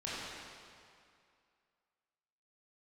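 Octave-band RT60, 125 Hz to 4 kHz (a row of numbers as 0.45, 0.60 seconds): 2.2, 2.2, 2.3, 2.4, 2.2, 1.9 seconds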